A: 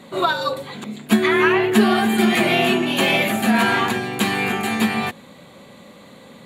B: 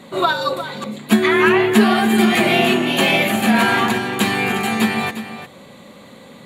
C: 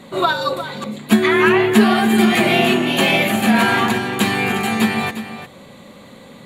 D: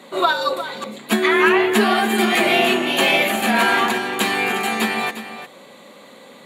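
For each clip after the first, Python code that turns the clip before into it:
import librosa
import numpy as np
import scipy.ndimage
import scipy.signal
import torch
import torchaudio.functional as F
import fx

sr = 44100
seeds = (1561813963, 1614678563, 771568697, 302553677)

y1 = x + 10.0 ** (-12.0 / 20.0) * np.pad(x, (int(353 * sr / 1000.0), 0))[:len(x)]
y1 = F.gain(torch.from_numpy(y1), 2.0).numpy()
y2 = fx.low_shelf(y1, sr, hz=78.0, db=7.5)
y3 = scipy.signal.sosfilt(scipy.signal.butter(2, 320.0, 'highpass', fs=sr, output='sos'), y2)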